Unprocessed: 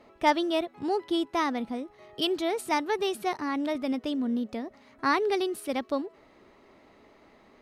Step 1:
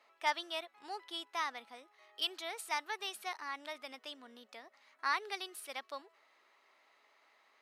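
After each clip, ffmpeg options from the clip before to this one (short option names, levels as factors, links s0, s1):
-af "highpass=1100,volume=0.562"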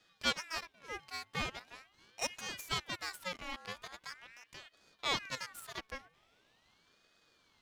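-af "aeval=exprs='if(lt(val(0),0),0.251*val(0),val(0))':c=same,aeval=exprs='val(0)*sin(2*PI*1800*n/s+1800*0.4/0.42*sin(2*PI*0.42*n/s))':c=same,volume=1.68"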